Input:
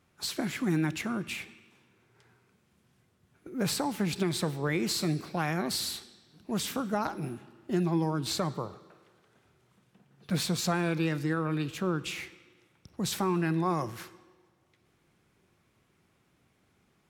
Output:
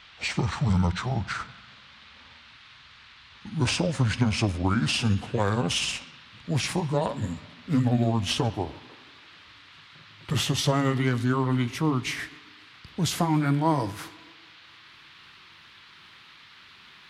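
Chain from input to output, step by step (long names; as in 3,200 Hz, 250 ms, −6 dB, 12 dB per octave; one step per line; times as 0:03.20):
pitch glide at a constant tempo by −10.5 semitones ending unshifted
noise in a band 1,000–4,100 Hz −58 dBFS
level +6.5 dB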